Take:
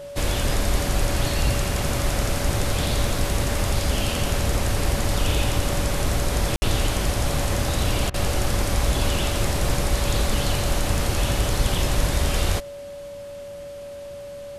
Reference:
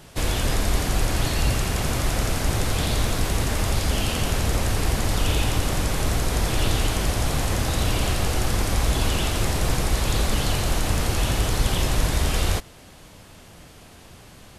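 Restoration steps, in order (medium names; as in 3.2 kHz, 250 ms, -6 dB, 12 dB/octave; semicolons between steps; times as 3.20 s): de-click; band-stop 570 Hz, Q 30; room tone fill 6.56–6.62 s; interpolate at 8.10 s, 39 ms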